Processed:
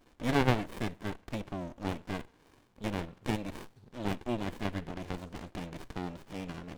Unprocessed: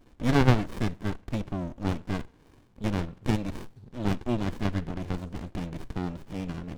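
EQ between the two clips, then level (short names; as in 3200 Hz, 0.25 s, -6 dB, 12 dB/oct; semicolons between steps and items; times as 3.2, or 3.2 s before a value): dynamic EQ 5400 Hz, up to -5 dB, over -52 dBFS, Q 1.1; dynamic EQ 1300 Hz, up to -4 dB, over -47 dBFS, Q 2; low shelf 310 Hz -10 dB; 0.0 dB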